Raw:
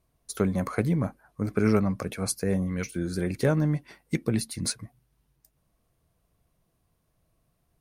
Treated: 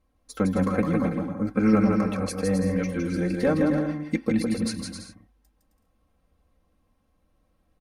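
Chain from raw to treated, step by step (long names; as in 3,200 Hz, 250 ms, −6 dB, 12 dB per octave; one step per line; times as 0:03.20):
low-pass filter 2,500 Hz 6 dB per octave
comb filter 3.8 ms, depth 91%
on a send: bouncing-ball delay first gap 160 ms, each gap 0.65×, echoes 5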